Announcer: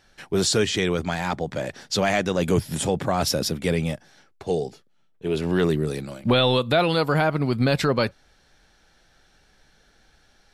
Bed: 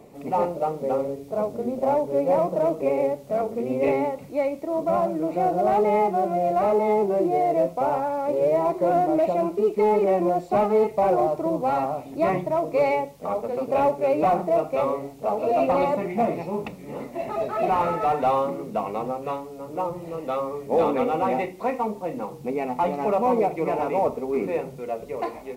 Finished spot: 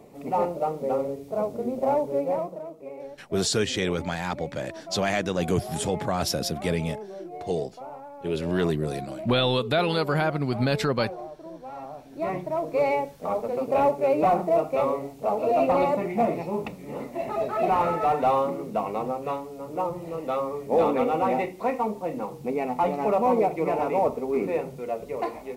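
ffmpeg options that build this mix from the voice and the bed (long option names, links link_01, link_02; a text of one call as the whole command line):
ffmpeg -i stem1.wav -i stem2.wav -filter_complex "[0:a]adelay=3000,volume=-3.5dB[link_01];[1:a]volume=14.5dB,afade=type=out:start_time=2.05:duration=0.59:silence=0.177828,afade=type=in:start_time=11.72:duration=1.4:silence=0.158489[link_02];[link_01][link_02]amix=inputs=2:normalize=0" out.wav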